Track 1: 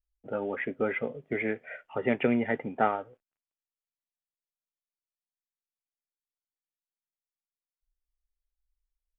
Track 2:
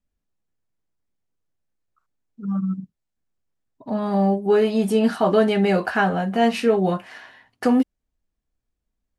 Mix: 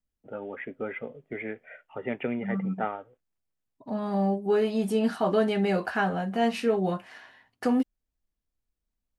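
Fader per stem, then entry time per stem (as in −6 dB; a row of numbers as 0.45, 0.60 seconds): −5.0, −6.5 decibels; 0.00, 0.00 seconds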